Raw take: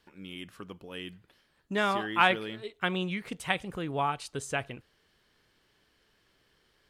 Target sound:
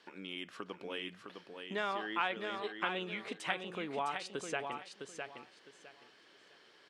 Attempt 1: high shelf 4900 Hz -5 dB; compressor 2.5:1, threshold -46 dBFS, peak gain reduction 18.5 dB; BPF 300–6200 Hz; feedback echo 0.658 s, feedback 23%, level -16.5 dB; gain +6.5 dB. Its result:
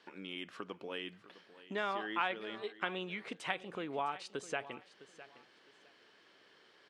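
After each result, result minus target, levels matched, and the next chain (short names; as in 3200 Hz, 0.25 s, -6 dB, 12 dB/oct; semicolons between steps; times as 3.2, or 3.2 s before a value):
echo-to-direct -10.5 dB; 8000 Hz band -3.5 dB
high shelf 4900 Hz -5 dB; compressor 2.5:1, threshold -46 dBFS, peak gain reduction 18.5 dB; BPF 300–6200 Hz; feedback echo 0.658 s, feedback 23%, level -6 dB; gain +6.5 dB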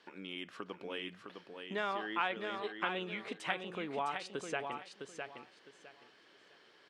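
8000 Hz band -3.0 dB
compressor 2.5:1, threshold -46 dBFS, peak gain reduction 18.5 dB; BPF 300–6200 Hz; feedback echo 0.658 s, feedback 23%, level -6 dB; gain +6.5 dB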